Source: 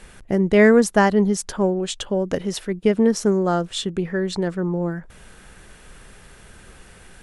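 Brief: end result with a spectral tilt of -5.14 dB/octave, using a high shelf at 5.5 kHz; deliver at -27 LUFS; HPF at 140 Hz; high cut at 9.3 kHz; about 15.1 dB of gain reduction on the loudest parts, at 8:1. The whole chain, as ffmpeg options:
-af "highpass=140,lowpass=9300,highshelf=f=5500:g=-5.5,acompressor=threshold=0.0501:ratio=8,volume=1.58"

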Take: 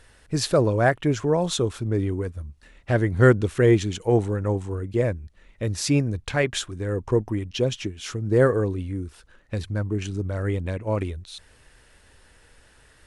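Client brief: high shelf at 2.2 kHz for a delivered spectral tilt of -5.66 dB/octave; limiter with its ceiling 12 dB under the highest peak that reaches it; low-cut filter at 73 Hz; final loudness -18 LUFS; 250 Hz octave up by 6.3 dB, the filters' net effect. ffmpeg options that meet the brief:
-af "highpass=73,equalizer=f=250:t=o:g=8.5,highshelf=f=2200:g=4,volume=1.88,alimiter=limit=0.562:level=0:latency=1"

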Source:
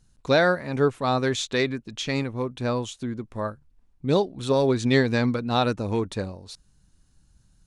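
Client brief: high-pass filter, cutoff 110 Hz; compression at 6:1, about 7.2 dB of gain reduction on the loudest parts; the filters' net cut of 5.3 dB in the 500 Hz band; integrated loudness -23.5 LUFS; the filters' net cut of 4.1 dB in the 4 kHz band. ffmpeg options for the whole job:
-af "highpass=110,equalizer=f=500:t=o:g=-6.5,equalizer=f=4000:t=o:g=-4.5,acompressor=threshold=0.0501:ratio=6,volume=2.82"

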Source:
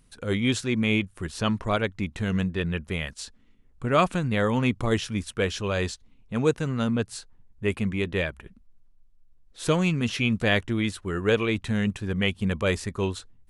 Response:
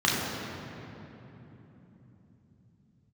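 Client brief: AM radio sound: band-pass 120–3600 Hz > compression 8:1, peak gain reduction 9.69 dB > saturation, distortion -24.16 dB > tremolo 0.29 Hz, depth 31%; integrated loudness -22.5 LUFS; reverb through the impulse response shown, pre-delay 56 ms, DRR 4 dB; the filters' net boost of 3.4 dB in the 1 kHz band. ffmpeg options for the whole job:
-filter_complex "[0:a]equalizer=f=1000:t=o:g=4.5,asplit=2[s0][s1];[1:a]atrim=start_sample=2205,adelay=56[s2];[s1][s2]afir=irnorm=-1:irlink=0,volume=0.1[s3];[s0][s3]amix=inputs=2:normalize=0,highpass=120,lowpass=3600,acompressor=threshold=0.0794:ratio=8,asoftclip=threshold=0.168,tremolo=f=0.29:d=0.31,volume=2.24"

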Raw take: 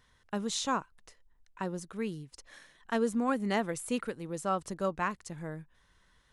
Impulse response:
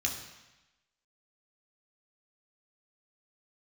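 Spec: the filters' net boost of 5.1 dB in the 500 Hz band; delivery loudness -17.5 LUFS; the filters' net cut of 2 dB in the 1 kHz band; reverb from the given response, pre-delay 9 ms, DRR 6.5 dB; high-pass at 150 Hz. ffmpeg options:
-filter_complex "[0:a]highpass=150,equalizer=f=500:t=o:g=7,equalizer=f=1000:t=o:g=-5,asplit=2[s0][s1];[1:a]atrim=start_sample=2205,adelay=9[s2];[s1][s2]afir=irnorm=-1:irlink=0,volume=0.266[s3];[s0][s3]amix=inputs=2:normalize=0,volume=5.01"

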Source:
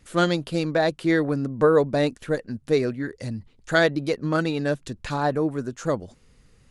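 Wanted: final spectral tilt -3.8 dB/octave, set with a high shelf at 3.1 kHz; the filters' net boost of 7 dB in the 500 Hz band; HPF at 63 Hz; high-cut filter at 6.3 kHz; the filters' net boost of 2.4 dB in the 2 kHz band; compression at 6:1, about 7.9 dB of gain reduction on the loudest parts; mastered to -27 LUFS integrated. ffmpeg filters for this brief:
-af "highpass=63,lowpass=6300,equalizer=f=500:t=o:g=8,equalizer=f=2000:t=o:g=4,highshelf=f=3100:g=-4.5,acompressor=threshold=0.178:ratio=6,volume=0.596"

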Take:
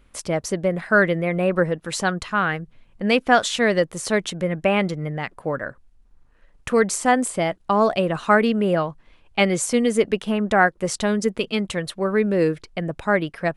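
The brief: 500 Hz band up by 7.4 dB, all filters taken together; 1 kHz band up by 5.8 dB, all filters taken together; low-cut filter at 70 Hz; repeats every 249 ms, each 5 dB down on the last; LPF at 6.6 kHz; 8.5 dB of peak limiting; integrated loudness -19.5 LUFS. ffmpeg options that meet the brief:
-af "highpass=70,lowpass=6600,equalizer=f=500:t=o:g=7.5,equalizer=f=1000:t=o:g=5,alimiter=limit=0.531:level=0:latency=1,aecho=1:1:249|498|747|996|1245|1494|1743:0.562|0.315|0.176|0.0988|0.0553|0.031|0.0173,volume=0.708"

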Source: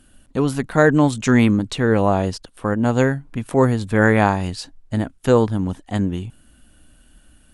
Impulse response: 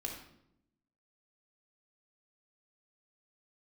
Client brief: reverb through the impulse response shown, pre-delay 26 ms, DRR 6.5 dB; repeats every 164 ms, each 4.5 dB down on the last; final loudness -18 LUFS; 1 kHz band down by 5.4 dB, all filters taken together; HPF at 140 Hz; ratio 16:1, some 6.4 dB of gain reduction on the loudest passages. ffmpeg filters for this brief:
-filter_complex "[0:a]highpass=140,equalizer=f=1000:t=o:g=-7.5,acompressor=threshold=0.141:ratio=16,aecho=1:1:164|328|492|656|820|984|1148|1312|1476:0.596|0.357|0.214|0.129|0.0772|0.0463|0.0278|0.0167|0.01,asplit=2[s0][s1];[1:a]atrim=start_sample=2205,adelay=26[s2];[s1][s2]afir=irnorm=-1:irlink=0,volume=0.473[s3];[s0][s3]amix=inputs=2:normalize=0,volume=1.58"

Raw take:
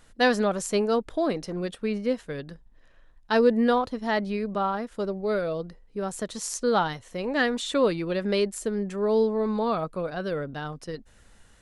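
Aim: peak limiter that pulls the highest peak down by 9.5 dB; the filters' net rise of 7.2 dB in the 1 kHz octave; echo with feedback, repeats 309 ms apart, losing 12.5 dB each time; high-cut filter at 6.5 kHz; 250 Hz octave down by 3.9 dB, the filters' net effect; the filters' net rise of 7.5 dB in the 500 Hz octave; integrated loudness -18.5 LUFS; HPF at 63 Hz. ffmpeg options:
-af "highpass=63,lowpass=6500,equalizer=f=250:t=o:g=-7.5,equalizer=f=500:t=o:g=9,equalizer=f=1000:t=o:g=6.5,alimiter=limit=0.211:level=0:latency=1,aecho=1:1:309|618|927:0.237|0.0569|0.0137,volume=1.88"

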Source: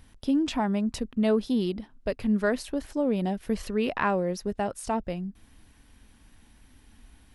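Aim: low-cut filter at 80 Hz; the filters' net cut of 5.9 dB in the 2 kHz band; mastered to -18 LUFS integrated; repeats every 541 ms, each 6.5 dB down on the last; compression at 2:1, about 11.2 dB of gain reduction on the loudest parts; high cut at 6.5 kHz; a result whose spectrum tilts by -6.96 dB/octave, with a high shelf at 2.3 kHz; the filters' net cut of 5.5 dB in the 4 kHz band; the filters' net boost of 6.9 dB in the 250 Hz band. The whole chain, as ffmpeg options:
-af "highpass=80,lowpass=6500,equalizer=f=250:t=o:g=8.5,equalizer=f=2000:t=o:g=-8.5,highshelf=f=2300:g=3,equalizer=f=4000:t=o:g=-6.5,acompressor=threshold=0.0178:ratio=2,aecho=1:1:541|1082|1623|2164|2705|3246:0.473|0.222|0.105|0.0491|0.0231|0.0109,volume=5.01"

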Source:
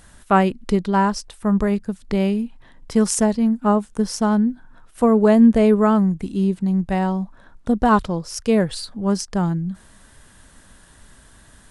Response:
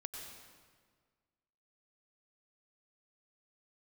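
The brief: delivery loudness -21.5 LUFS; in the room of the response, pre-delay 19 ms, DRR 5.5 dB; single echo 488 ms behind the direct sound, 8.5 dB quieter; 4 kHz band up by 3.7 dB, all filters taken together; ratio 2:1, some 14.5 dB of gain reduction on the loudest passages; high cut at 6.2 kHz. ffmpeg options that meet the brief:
-filter_complex "[0:a]lowpass=6200,equalizer=f=4000:t=o:g=6.5,acompressor=threshold=0.0158:ratio=2,aecho=1:1:488:0.376,asplit=2[s0][s1];[1:a]atrim=start_sample=2205,adelay=19[s2];[s1][s2]afir=irnorm=-1:irlink=0,volume=0.668[s3];[s0][s3]amix=inputs=2:normalize=0,volume=2.66"

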